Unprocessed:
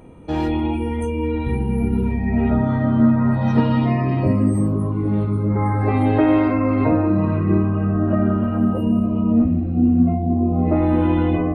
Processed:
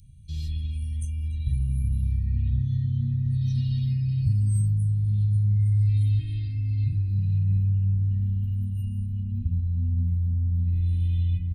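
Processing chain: elliptic band-stop 120–4100 Hz, stop band 60 dB; echo 0.288 s -21 dB

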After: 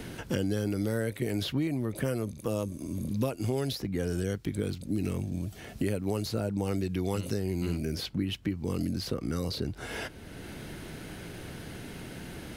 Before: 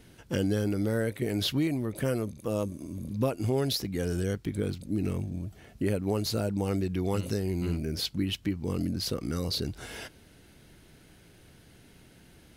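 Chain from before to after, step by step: three-band squash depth 70%; gain -1.5 dB

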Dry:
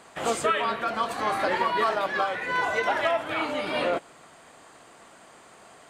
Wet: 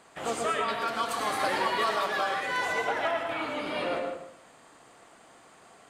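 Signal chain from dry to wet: 0.68–2.73 high shelf 3200 Hz +11 dB; reverb RT60 0.75 s, pre-delay 95 ms, DRR 3.5 dB; gain -5.5 dB

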